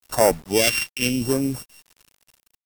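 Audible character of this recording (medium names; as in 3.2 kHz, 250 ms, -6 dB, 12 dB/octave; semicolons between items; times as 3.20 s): a buzz of ramps at a fixed pitch in blocks of 16 samples; phasing stages 2, 0.86 Hz, lowest notch 580–3000 Hz; a quantiser's noise floor 8-bit, dither none; MP3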